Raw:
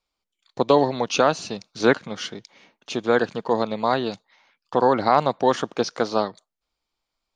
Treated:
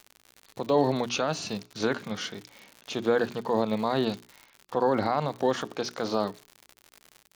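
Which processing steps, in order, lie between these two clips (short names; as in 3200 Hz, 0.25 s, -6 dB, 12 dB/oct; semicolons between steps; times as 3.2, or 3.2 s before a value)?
gate with hold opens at -52 dBFS; crackle 110/s -34 dBFS; limiter -13.5 dBFS, peak gain reduction 10 dB; harmonic-percussive split percussive -8 dB; notches 60/120/180/240/300/360/420 Hz; gain +3 dB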